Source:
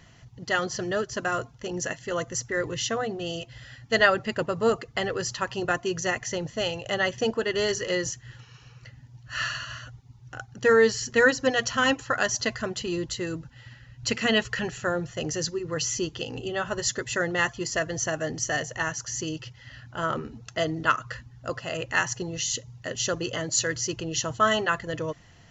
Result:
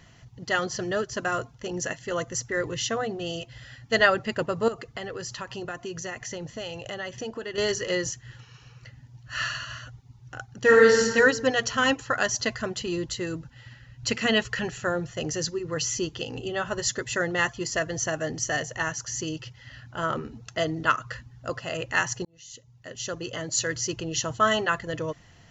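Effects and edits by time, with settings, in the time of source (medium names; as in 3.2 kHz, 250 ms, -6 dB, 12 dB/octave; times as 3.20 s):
4.68–7.58 s: compression 3:1, threshold -33 dBFS
10.59–11.05 s: reverb throw, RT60 1.4 s, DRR -1.5 dB
22.25–23.83 s: fade in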